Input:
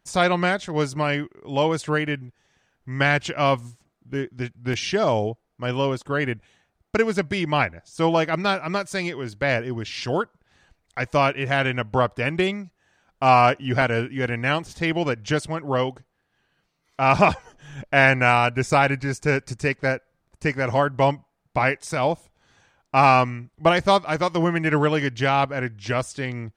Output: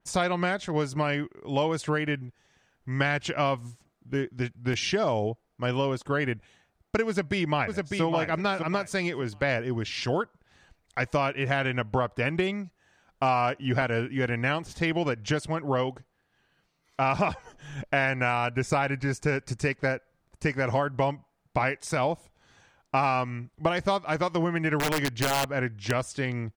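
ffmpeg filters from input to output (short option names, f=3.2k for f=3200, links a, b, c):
-filter_complex "[0:a]asplit=2[a][b];[b]afade=t=in:st=7.07:d=0.01,afade=t=out:st=8.02:d=0.01,aecho=0:1:600|1200|1800:0.530884|0.0796327|0.0119449[c];[a][c]amix=inputs=2:normalize=0,asettb=1/sr,asplit=3[d][e][f];[d]atrim=end=24.794[g];[e]atrim=start=24.79:end=25.91,asetpts=PTS-STARTPTS,afade=t=in:d=0.004:c=qsin,afade=t=out:st=1.116:d=0.004:c=qsin,aeval=exprs='(mod(4.47*val(0)+1,2)-1)/4.47':c=same[h];[f]atrim=start=25.906[i];[g][h]acrossfade=d=0.004:c1=hsin:c2=qsin[j];[j][i]acrossfade=d=0.004:c1=qsin:c2=hsin,acompressor=threshold=-22dB:ratio=5,adynamicequalizer=threshold=0.00794:dfrequency=3000:dqfactor=0.7:tfrequency=3000:tqfactor=0.7:attack=5:release=100:ratio=0.375:range=1.5:mode=cutabove:tftype=highshelf"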